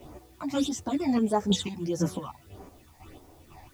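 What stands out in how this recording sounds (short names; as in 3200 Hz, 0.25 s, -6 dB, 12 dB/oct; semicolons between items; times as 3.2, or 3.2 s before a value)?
phasing stages 8, 1.6 Hz, lowest notch 400–3700 Hz; chopped level 2 Hz, depth 60%, duty 35%; a quantiser's noise floor 12-bit, dither triangular; a shimmering, thickened sound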